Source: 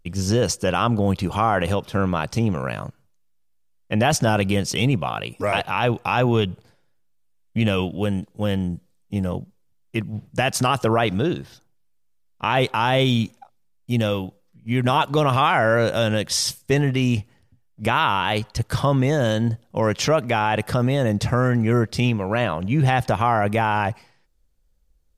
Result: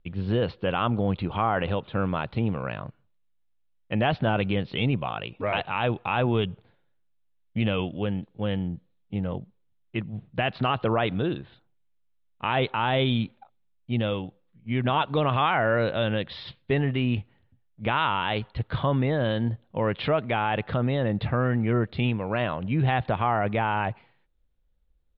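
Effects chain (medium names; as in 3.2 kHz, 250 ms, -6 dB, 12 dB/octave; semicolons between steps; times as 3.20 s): steep low-pass 4 kHz 72 dB/octave; trim -5 dB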